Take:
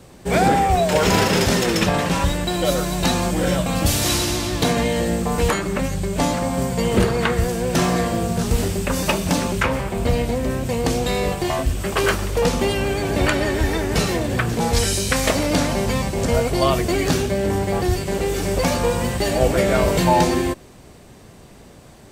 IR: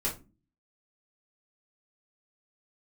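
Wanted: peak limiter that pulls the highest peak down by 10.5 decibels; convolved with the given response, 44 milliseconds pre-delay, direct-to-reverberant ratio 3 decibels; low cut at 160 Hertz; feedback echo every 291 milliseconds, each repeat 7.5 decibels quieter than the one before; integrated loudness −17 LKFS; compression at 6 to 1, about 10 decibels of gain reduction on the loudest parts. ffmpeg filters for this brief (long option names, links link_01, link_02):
-filter_complex "[0:a]highpass=160,acompressor=threshold=-24dB:ratio=6,alimiter=limit=-21.5dB:level=0:latency=1,aecho=1:1:291|582|873|1164|1455:0.422|0.177|0.0744|0.0312|0.0131,asplit=2[link_01][link_02];[1:a]atrim=start_sample=2205,adelay=44[link_03];[link_02][link_03]afir=irnorm=-1:irlink=0,volume=-8.5dB[link_04];[link_01][link_04]amix=inputs=2:normalize=0,volume=9.5dB"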